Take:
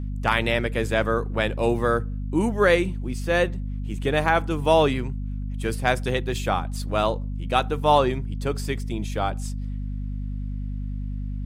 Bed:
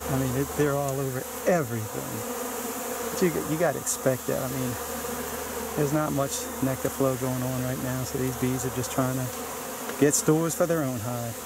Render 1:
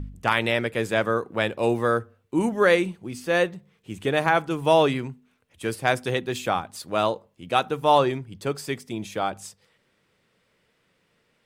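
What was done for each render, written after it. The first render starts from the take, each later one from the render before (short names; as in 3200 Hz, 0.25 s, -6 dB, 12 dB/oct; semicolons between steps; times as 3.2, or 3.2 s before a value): de-hum 50 Hz, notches 5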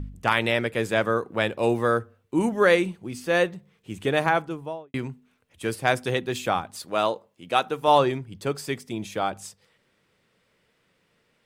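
4.17–4.94 studio fade out; 6.85–7.88 HPF 240 Hz 6 dB/oct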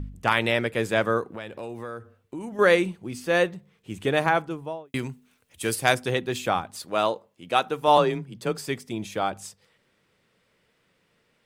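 1.25–2.59 compressor 4:1, threshold -34 dBFS; 4.85–5.95 high shelf 3900 Hz +11.5 dB; 7.97–8.58 frequency shift +22 Hz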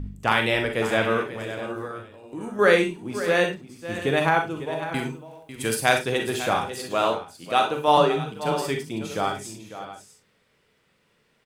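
tapped delay 40/549/646 ms -9/-12.5/-15 dB; non-linear reverb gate 80 ms rising, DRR 5 dB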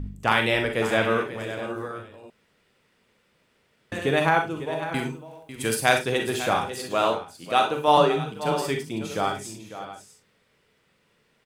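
2.3–3.92 room tone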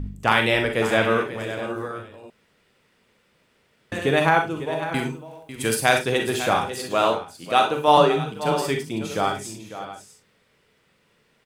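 gain +2.5 dB; limiter -2 dBFS, peak gain reduction 2 dB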